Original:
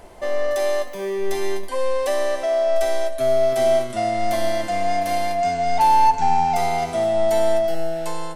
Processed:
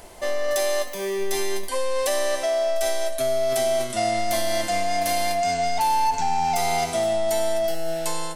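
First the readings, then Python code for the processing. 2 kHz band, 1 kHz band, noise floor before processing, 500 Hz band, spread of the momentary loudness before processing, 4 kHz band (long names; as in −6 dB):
+0.5 dB, −4.0 dB, −30 dBFS, −3.5 dB, 8 LU, +4.0 dB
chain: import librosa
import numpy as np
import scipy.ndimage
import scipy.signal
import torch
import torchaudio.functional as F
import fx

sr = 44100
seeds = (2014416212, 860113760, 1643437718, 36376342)

p1 = fx.high_shelf(x, sr, hz=2900.0, db=11.5)
p2 = fx.over_compress(p1, sr, threshold_db=-20.0, ratio=-1.0)
p3 = p1 + F.gain(torch.from_numpy(p2), 0.0).numpy()
y = F.gain(torch.from_numpy(p3), -9.0).numpy()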